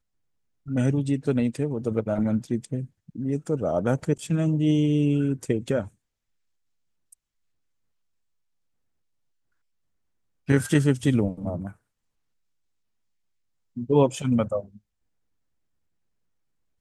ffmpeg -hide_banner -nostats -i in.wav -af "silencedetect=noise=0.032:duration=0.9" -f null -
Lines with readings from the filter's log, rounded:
silence_start: 5.83
silence_end: 10.49 | silence_duration: 4.65
silence_start: 11.69
silence_end: 13.77 | silence_duration: 2.08
silence_start: 14.60
silence_end: 16.80 | silence_duration: 2.20